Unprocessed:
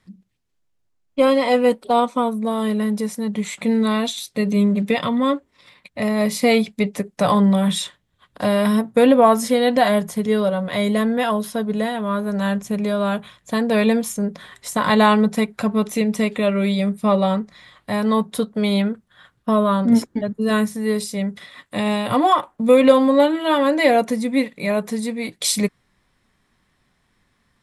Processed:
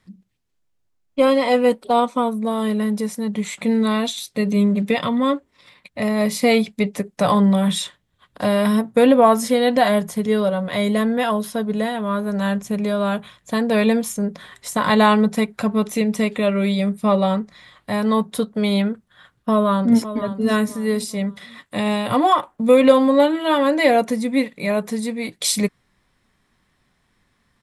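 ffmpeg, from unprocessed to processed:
-filter_complex "[0:a]asplit=2[s0][s1];[s1]afade=t=in:st=19.51:d=0.01,afade=t=out:st=20.22:d=0.01,aecho=0:1:530|1060|1590:0.251189|0.0753566|0.022607[s2];[s0][s2]amix=inputs=2:normalize=0"

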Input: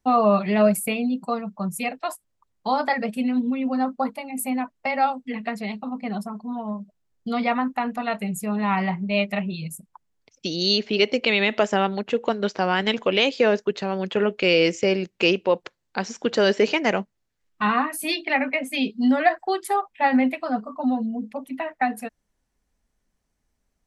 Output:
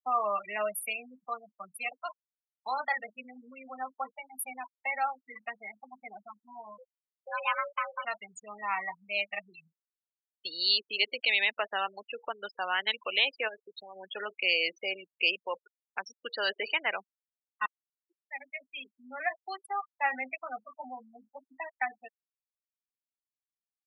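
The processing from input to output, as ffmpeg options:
-filter_complex "[0:a]asettb=1/sr,asplit=3[s0][s1][s2];[s0]atrim=end=6.784[s3];[s1]atrim=start=6.78:end=8.05,asetpts=PTS-STARTPTS,afade=t=in:d=0.004:c=qsin,afade=t=out:st=1.266:d=0.004:c=qsin,afreqshift=310[s4];[s2]atrim=start=8.046[s5];[s3][s4]acrossfade=d=0.004:c1=hsin:c2=qsin[s6];[s6][s5]acrossfade=d=0.004:c1=qsin:c2=hsin,asplit=3[s7][s8][s9];[s7]afade=t=out:st=13.47:d=0.02[s10];[s8]acompressor=threshold=0.0562:ratio=5:attack=3.2:release=140:knee=1:detection=peak,afade=t=in:st=13.47:d=0.02,afade=t=out:st=13.95:d=0.02[s11];[s9]afade=t=in:st=13.95:d=0.02[s12];[s10][s11][s12]amix=inputs=3:normalize=0,asplit=2[s13][s14];[s13]atrim=end=17.66,asetpts=PTS-STARTPTS,afade=t=out:st=17.656:d=0.004:c=hsin[s15];[s14]atrim=start=17.66,asetpts=PTS-STARTPTS,afade=t=in:d=2.43[s16];[s15][s16]concat=n=2:v=0:a=1,agate=range=0.0224:threshold=0.0224:ratio=3:detection=peak,afftfilt=real='re*gte(hypot(re,im),0.0708)':imag='im*gte(hypot(re,im),0.0708)':win_size=1024:overlap=0.75,highpass=1100,volume=0.668"

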